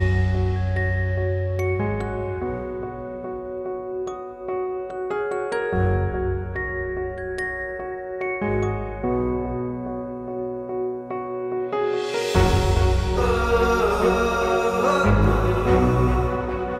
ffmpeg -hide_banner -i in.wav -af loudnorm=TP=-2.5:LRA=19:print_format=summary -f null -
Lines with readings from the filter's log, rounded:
Input Integrated:    -23.0 LUFS
Input True Peak:      -5.4 dBTP
Input LRA:             6.5 LU
Input Threshold:     -33.0 LUFS